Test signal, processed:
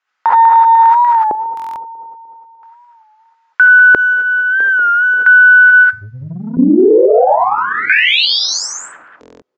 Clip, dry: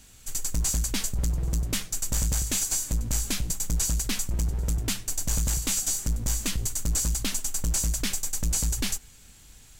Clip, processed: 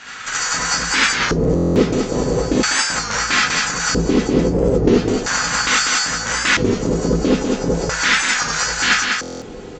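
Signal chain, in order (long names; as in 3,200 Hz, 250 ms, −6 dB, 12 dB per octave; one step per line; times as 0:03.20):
tuned comb filter 250 Hz, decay 0.36 s, harmonics all, mix 50%
reverb whose tail is shaped and stops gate 100 ms rising, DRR −6.5 dB
downward compressor 12 to 1, threshold −30 dBFS
harmonic generator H 8 −37 dB, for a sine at −20.5 dBFS
parametric band 80 Hz −9.5 dB 0.39 octaves
single-tap delay 196 ms −4.5 dB
auto-filter band-pass square 0.38 Hz 410–1,500 Hz
downsampling to 16,000 Hz
dynamic equaliser 1,200 Hz, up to −3 dB, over −52 dBFS, Q 4.3
buffer that repeats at 0:01.55/0:09.21, samples 1,024, times 8
boost into a limiter +35.5 dB
wow of a warped record 33 1/3 rpm, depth 100 cents
level −1 dB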